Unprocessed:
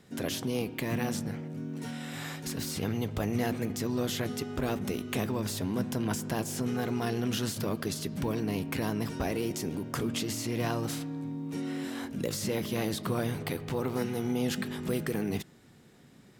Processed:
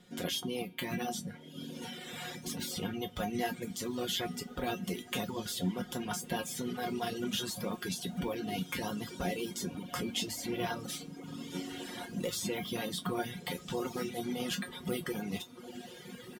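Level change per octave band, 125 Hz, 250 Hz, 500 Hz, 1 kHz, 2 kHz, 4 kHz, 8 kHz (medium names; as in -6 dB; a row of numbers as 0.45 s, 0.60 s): -8.5 dB, -5.5 dB, -4.5 dB, -1.0 dB, -2.0 dB, +1.0 dB, -2.0 dB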